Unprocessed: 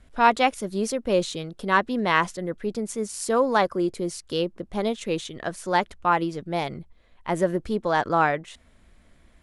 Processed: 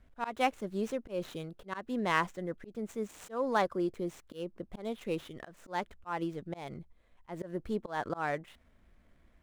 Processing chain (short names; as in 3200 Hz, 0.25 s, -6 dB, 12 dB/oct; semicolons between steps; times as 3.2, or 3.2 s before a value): median filter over 9 samples; auto swell 0.193 s; gain -7.5 dB